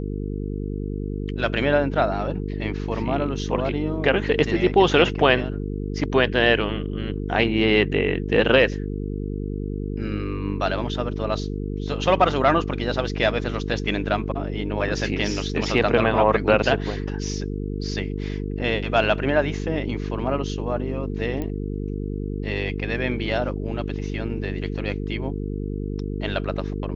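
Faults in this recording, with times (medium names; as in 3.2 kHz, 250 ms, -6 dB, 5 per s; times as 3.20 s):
buzz 50 Hz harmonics 9 -28 dBFS
21.42 s: pop -17 dBFS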